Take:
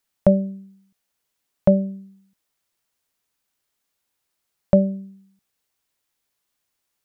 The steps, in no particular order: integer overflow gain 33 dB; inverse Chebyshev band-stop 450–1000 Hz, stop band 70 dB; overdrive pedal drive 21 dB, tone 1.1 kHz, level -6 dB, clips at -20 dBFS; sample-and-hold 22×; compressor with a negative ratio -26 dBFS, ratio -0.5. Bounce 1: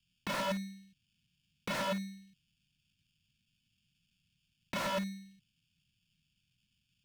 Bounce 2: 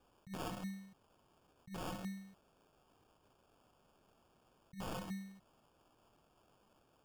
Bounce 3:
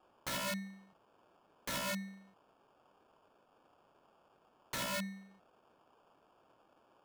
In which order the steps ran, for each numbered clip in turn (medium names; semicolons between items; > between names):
sample-and-hold > inverse Chebyshev band-stop > compressor with a negative ratio > integer overflow > overdrive pedal; compressor with a negative ratio > integer overflow > overdrive pedal > inverse Chebyshev band-stop > sample-and-hold; inverse Chebyshev band-stop > sample-and-hold > overdrive pedal > integer overflow > compressor with a negative ratio